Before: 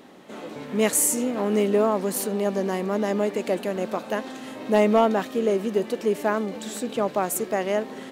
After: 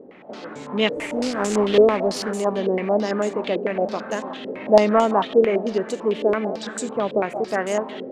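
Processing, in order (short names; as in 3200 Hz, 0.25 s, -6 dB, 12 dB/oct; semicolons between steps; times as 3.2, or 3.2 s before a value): 0.96–2.31 companded quantiser 4-bit; split-band echo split 550 Hz, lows 0.739 s, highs 0.179 s, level -15 dB; stepped low-pass 9 Hz 480–7300 Hz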